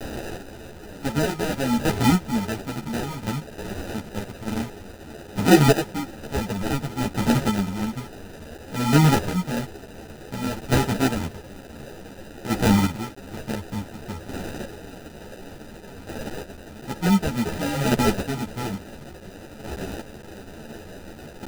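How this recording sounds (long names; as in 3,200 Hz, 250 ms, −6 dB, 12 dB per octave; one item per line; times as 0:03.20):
a quantiser's noise floor 6 bits, dither triangular
chopped level 0.56 Hz, depth 60%, duty 20%
aliases and images of a low sample rate 1,100 Hz, jitter 0%
a shimmering, thickened sound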